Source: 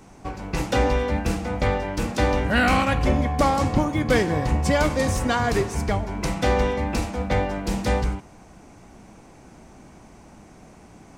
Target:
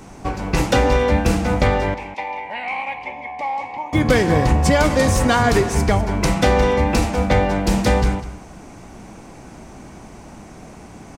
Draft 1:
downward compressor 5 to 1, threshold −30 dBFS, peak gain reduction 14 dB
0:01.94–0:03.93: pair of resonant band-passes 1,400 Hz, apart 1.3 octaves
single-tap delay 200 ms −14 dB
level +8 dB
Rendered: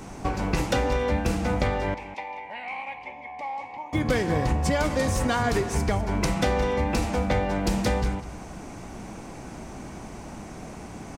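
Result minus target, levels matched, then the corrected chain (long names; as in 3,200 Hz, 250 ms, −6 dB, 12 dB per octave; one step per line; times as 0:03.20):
downward compressor: peak gain reduction +9 dB
downward compressor 5 to 1, threshold −19 dBFS, peak gain reduction 5 dB
0:01.94–0:03.93: pair of resonant band-passes 1,400 Hz, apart 1.3 octaves
single-tap delay 200 ms −14 dB
level +8 dB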